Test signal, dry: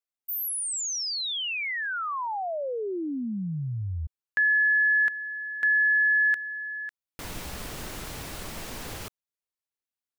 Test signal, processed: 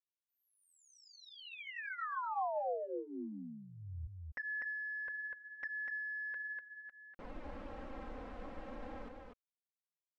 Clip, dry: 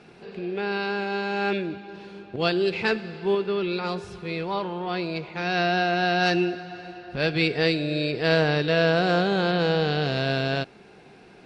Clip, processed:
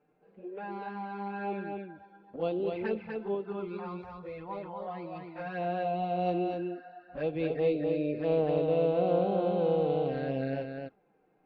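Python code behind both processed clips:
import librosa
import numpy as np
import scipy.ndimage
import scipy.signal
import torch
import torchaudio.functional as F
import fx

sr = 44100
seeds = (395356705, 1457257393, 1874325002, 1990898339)

y = fx.noise_reduce_blind(x, sr, reduce_db=11)
y = scipy.signal.sosfilt(scipy.signal.butter(2, 1600.0, 'lowpass', fs=sr, output='sos'), y)
y = fx.peak_eq(y, sr, hz=530.0, db=5.5, octaves=1.3)
y = y + 0.34 * np.pad(y, (int(3.8 * sr / 1000.0), 0))[:len(y)]
y = fx.env_flanger(y, sr, rest_ms=6.9, full_db=-18.5)
y = y + 10.0 ** (-4.0 / 20.0) * np.pad(y, (int(246 * sr / 1000.0), 0))[:len(y)]
y = y * librosa.db_to_amplitude(-9.0)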